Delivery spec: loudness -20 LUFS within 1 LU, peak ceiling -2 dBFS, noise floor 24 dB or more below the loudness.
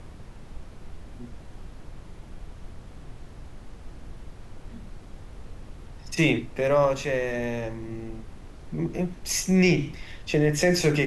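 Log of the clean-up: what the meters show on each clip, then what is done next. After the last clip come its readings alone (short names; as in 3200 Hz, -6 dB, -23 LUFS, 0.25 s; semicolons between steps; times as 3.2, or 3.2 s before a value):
noise floor -45 dBFS; noise floor target -49 dBFS; loudness -25.0 LUFS; peak -8.0 dBFS; loudness target -20.0 LUFS
-> noise print and reduce 6 dB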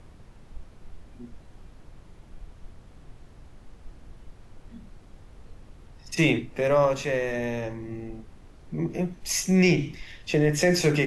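noise floor -50 dBFS; loudness -25.0 LUFS; peak -8.0 dBFS; loudness target -20.0 LUFS
-> gain +5 dB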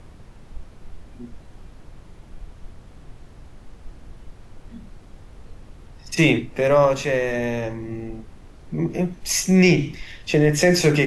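loudness -20.0 LUFS; peak -3.0 dBFS; noise floor -45 dBFS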